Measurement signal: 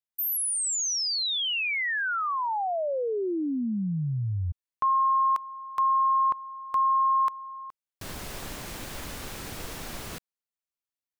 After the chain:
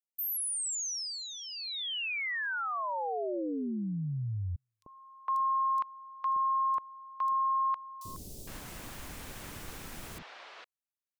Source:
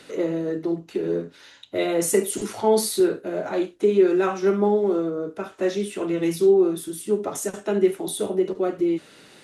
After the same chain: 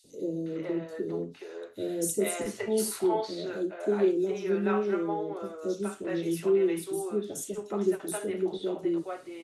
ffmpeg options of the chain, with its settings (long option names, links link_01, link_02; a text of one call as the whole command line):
ffmpeg -i in.wav -filter_complex "[0:a]acrossover=split=520|4400[link_01][link_02][link_03];[link_01]adelay=40[link_04];[link_02]adelay=460[link_05];[link_04][link_05][link_03]amix=inputs=3:normalize=0,volume=-5.5dB" out.wav